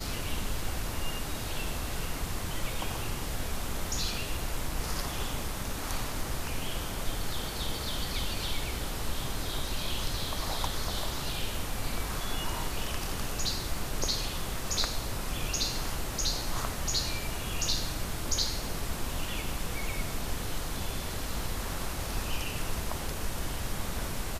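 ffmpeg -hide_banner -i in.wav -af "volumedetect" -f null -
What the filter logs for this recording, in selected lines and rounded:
mean_volume: -31.3 dB
max_volume: -14.8 dB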